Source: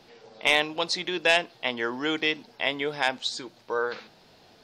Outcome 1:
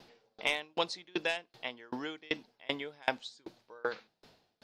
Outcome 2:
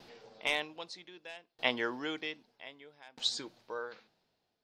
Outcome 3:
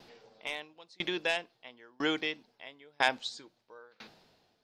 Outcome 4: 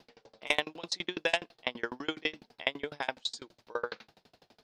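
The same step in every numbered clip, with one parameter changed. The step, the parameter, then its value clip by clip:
tremolo with a ramp in dB, speed: 2.6, 0.63, 1, 12 Hertz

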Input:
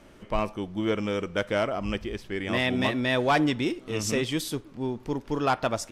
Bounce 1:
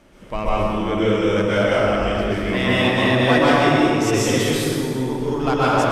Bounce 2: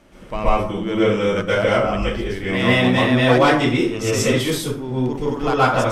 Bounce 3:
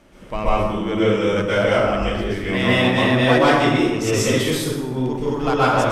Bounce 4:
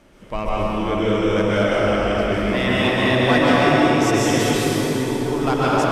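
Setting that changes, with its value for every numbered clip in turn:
dense smooth reverb, RT60: 2.6, 0.53, 1.2, 5.3 seconds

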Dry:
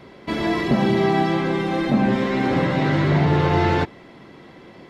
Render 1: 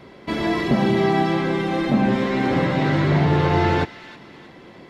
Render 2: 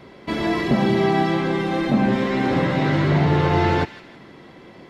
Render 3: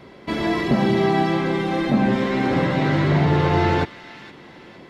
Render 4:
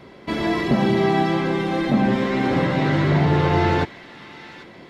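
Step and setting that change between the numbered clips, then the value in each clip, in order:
delay with a high-pass on its return, delay time: 317, 162, 465, 793 milliseconds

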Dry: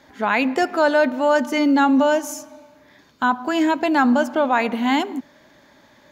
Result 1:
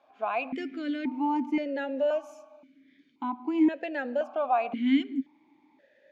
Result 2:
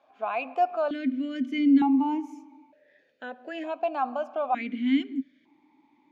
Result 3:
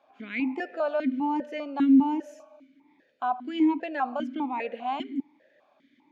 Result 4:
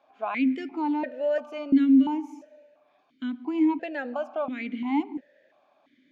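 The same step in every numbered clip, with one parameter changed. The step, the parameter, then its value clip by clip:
formant filter that steps through the vowels, speed: 1.9, 1.1, 5, 2.9 Hertz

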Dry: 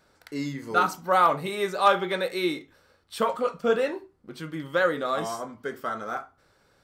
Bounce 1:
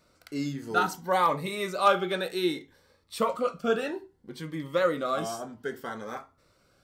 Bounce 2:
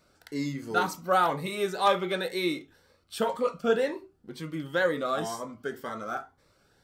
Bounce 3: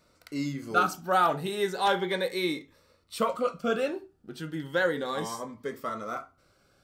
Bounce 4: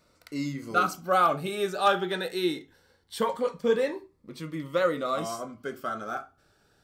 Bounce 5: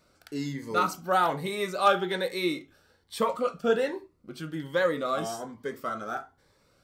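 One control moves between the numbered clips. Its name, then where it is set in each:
phaser whose notches keep moving one way, speed: 0.62, 2, 0.33, 0.21, 1.2 Hertz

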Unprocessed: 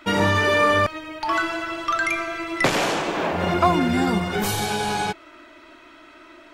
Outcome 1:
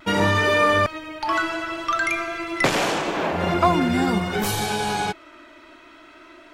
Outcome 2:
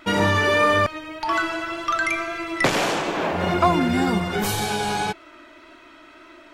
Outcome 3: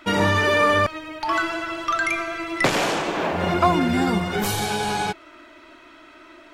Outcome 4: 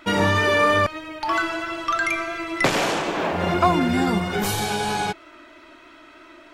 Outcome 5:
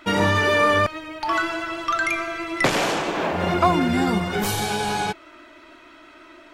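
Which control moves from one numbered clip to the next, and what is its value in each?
pitch vibrato, speed: 0.51, 1.8, 16, 3.1, 6.3 Hertz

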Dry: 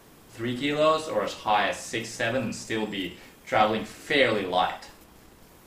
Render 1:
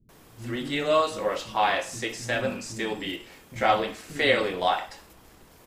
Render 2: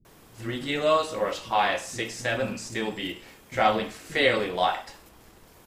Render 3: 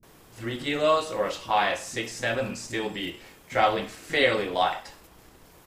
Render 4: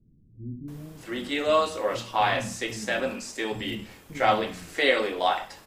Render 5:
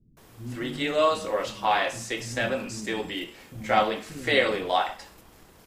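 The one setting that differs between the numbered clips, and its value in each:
multiband delay without the direct sound, delay time: 90, 50, 30, 680, 170 milliseconds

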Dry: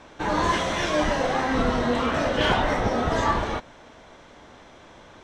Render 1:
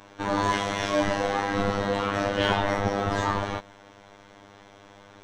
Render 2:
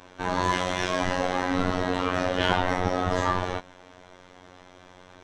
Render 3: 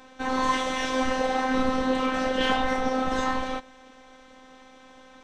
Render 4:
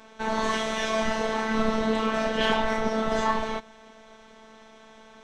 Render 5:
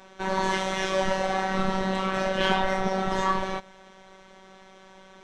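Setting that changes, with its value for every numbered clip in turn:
phases set to zero, frequency: 100, 91, 260, 220, 190 Hertz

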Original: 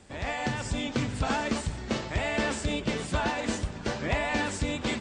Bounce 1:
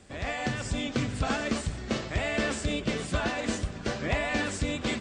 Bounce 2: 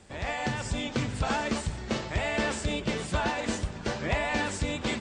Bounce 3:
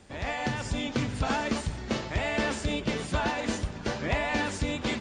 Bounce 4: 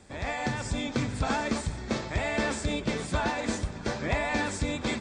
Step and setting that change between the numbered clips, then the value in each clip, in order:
notch filter, centre frequency: 900, 270, 7,900, 2,900 Hertz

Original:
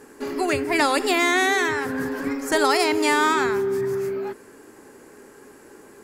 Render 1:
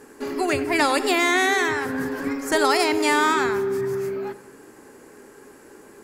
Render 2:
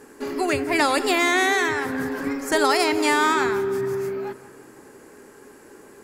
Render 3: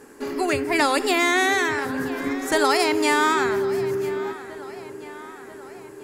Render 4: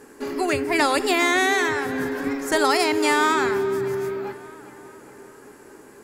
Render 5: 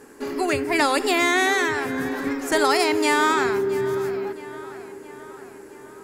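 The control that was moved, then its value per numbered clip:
feedback echo with a low-pass in the loop, delay time: 91, 175, 989, 405, 667 milliseconds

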